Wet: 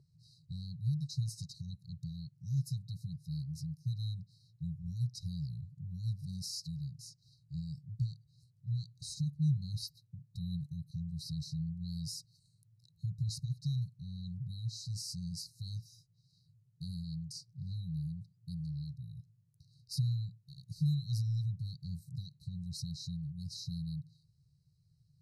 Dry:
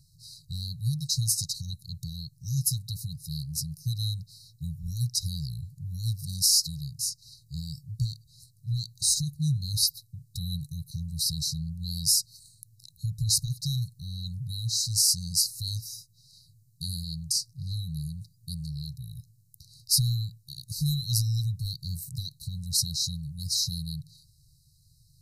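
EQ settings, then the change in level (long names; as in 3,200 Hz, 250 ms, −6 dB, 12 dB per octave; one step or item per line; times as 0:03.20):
resonant band-pass 390 Hz, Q 2.7
+12.5 dB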